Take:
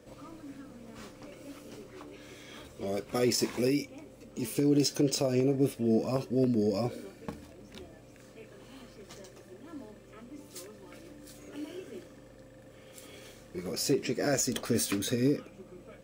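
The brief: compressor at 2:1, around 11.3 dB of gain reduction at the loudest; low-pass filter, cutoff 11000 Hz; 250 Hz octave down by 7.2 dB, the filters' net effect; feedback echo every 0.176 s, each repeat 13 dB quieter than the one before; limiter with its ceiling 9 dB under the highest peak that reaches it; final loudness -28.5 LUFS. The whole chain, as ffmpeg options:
-af "lowpass=11k,equalizer=f=250:t=o:g=-9,acompressor=threshold=-48dB:ratio=2,alimiter=level_in=12.5dB:limit=-24dB:level=0:latency=1,volume=-12.5dB,aecho=1:1:176|352|528:0.224|0.0493|0.0108,volume=20dB"

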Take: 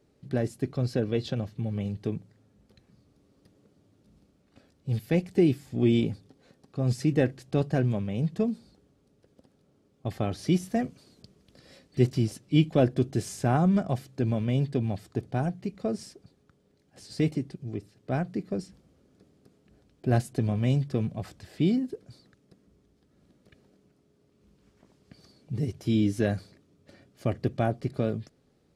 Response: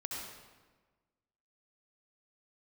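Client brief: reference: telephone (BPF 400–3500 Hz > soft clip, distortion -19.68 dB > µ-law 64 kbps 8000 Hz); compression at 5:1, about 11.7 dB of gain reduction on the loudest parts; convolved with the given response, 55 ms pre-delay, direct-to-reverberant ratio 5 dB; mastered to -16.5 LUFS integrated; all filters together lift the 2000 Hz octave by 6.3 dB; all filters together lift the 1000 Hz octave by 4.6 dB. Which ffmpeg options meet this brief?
-filter_complex "[0:a]equalizer=f=1k:t=o:g=6.5,equalizer=f=2k:t=o:g=6.5,acompressor=threshold=-29dB:ratio=5,asplit=2[a][b];[1:a]atrim=start_sample=2205,adelay=55[c];[b][c]afir=irnorm=-1:irlink=0,volume=-6dB[d];[a][d]amix=inputs=2:normalize=0,highpass=400,lowpass=3.5k,asoftclip=threshold=-26.5dB,volume=25dB" -ar 8000 -c:a pcm_mulaw

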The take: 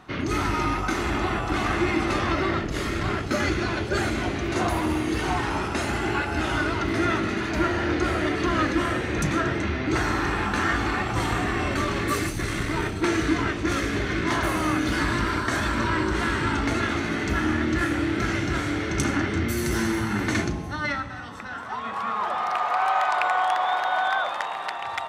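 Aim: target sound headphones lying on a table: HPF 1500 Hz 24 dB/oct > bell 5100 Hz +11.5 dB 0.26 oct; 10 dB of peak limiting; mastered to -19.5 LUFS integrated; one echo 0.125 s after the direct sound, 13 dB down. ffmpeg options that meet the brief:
-af "alimiter=limit=-19.5dB:level=0:latency=1,highpass=f=1.5k:w=0.5412,highpass=f=1.5k:w=1.3066,equalizer=f=5.1k:t=o:w=0.26:g=11.5,aecho=1:1:125:0.224,volume=13.5dB"

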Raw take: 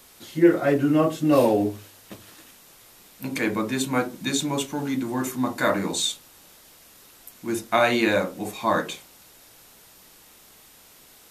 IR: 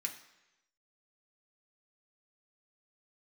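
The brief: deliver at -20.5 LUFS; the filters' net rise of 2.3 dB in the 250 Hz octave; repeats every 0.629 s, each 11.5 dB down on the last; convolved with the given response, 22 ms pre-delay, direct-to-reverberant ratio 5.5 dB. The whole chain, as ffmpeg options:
-filter_complex "[0:a]equalizer=f=250:t=o:g=3,aecho=1:1:629|1258|1887:0.266|0.0718|0.0194,asplit=2[a][b];[1:a]atrim=start_sample=2205,adelay=22[c];[b][c]afir=irnorm=-1:irlink=0,volume=-5.5dB[d];[a][d]amix=inputs=2:normalize=0,volume=1.5dB"

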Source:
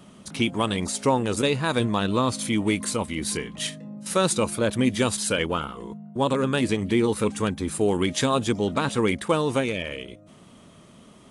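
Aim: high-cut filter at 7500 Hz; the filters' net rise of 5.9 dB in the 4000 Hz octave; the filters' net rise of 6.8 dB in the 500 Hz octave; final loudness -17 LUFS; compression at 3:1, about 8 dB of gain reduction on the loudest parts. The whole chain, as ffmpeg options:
-af "lowpass=7.5k,equalizer=f=500:t=o:g=8,equalizer=f=4k:t=o:g=7.5,acompressor=threshold=-23dB:ratio=3,volume=9.5dB"

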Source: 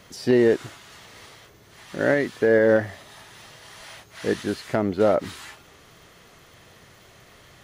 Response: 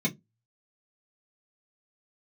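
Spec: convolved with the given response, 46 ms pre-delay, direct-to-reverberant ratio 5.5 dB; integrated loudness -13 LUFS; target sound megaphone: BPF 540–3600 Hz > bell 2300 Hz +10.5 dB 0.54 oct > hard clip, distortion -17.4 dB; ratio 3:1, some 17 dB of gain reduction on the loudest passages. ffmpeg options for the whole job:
-filter_complex "[0:a]acompressor=threshold=-38dB:ratio=3,asplit=2[a][b];[1:a]atrim=start_sample=2205,adelay=46[c];[b][c]afir=irnorm=-1:irlink=0,volume=-13.5dB[d];[a][d]amix=inputs=2:normalize=0,highpass=540,lowpass=3.6k,equalizer=f=2.3k:t=o:w=0.54:g=10.5,asoftclip=type=hard:threshold=-31dB,volume=28dB"

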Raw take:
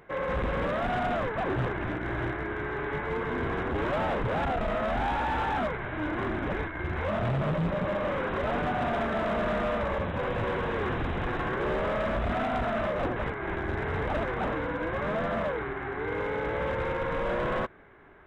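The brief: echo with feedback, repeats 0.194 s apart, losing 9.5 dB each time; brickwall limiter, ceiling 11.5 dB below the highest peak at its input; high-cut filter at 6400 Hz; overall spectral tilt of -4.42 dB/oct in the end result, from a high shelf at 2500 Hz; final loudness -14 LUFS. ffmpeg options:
-af "lowpass=6.4k,highshelf=f=2.5k:g=6.5,alimiter=level_in=8.5dB:limit=-24dB:level=0:latency=1,volume=-8.5dB,aecho=1:1:194|388|582|776:0.335|0.111|0.0365|0.012,volume=24dB"

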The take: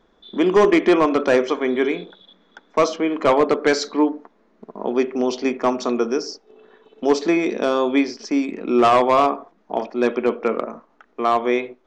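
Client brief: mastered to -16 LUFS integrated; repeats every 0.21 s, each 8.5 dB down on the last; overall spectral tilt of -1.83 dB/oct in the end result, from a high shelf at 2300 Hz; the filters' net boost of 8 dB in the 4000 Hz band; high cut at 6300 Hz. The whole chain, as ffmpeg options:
-af "lowpass=6.3k,highshelf=f=2.3k:g=7,equalizer=f=4k:t=o:g=4.5,aecho=1:1:210|420|630|840:0.376|0.143|0.0543|0.0206,volume=2dB"

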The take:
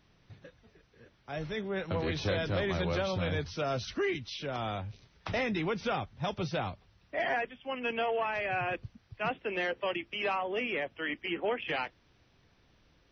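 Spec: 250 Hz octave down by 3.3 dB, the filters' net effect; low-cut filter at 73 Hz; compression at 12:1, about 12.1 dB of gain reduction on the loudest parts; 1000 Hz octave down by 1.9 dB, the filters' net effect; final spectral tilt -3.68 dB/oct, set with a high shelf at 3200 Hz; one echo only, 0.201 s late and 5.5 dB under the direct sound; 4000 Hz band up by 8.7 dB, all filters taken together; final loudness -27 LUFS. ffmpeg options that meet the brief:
-af "highpass=73,equalizer=f=250:t=o:g=-5,equalizer=f=1k:t=o:g=-3.5,highshelf=f=3.2k:g=7,equalizer=f=4k:t=o:g=7,acompressor=threshold=-39dB:ratio=12,aecho=1:1:201:0.531,volume=14.5dB"

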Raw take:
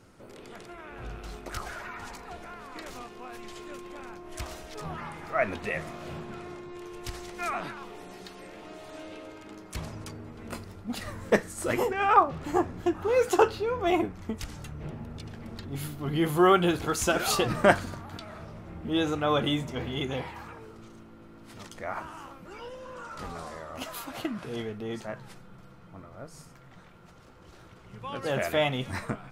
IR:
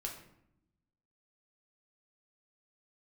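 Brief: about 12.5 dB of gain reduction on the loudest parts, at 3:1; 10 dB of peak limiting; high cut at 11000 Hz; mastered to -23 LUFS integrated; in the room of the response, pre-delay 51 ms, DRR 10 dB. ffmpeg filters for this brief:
-filter_complex "[0:a]lowpass=11k,acompressor=threshold=-32dB:ratio=3,alimiter=level_in=3dB:limit=-24dB:level=0:latency=1,volume=-3dB,asplit=2[a][b];[1:a]atrim=start_sample=2205,adelay=51[c];[b][c]afir=irnorm=-1:irlink=0,volume=-9.5dB[d];[a][d]amix=inputs=2:normalize=0,volume=16dB"

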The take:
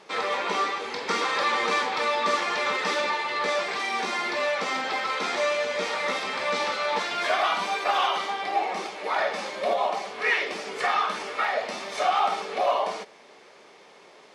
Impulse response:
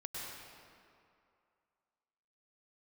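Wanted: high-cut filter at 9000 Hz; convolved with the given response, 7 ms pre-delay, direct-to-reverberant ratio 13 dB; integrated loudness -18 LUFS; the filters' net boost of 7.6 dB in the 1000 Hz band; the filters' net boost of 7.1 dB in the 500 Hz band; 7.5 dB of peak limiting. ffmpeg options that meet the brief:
-filter_complex "[0:a]lowpass=9k,equalizer=f=500:t=o:g=6,equalizer=f=1k:t=o:g=8,alimiter=limit=-12dB:level=0:latency=1,asplit=2[a][b];[1:a]atrim=start_sample=2205,adelay=7[c];[b][c]afir=irnorm=-1:irlink=0,volume=-13dB[d];[a][d]amix=inputs=2:normalize=0,volume=3.5dB"

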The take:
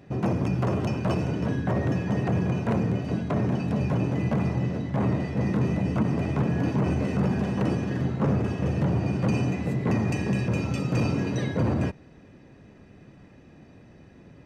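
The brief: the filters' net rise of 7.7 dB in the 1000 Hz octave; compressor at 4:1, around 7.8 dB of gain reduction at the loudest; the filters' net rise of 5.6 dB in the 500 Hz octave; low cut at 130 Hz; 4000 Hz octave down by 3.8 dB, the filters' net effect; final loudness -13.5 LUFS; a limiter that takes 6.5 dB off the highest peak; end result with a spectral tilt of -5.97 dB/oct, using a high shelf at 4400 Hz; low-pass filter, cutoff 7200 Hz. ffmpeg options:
-af "highpass=130,lowpass=7.2k,equalizer=f=500:t=o:g=5,equalizer=f=1k:t=o:g=8.5,equalizer=f=4k:t=o:g=-3.5,highshelf=f=4.4k:g=-4,acompressor=threshold=-28dB:ratio=4,volume=19.5dB,alimiter=limit=-4dB:level=0:latency=1"

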